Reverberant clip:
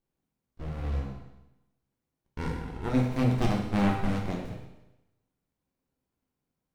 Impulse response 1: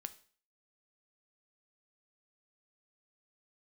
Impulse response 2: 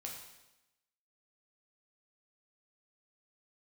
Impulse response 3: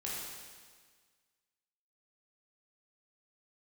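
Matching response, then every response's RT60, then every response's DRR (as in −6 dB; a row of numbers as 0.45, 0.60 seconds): 2; 0.45, 0.95, 1.6 seconds; 10.5, −1.5, −6.5 decibels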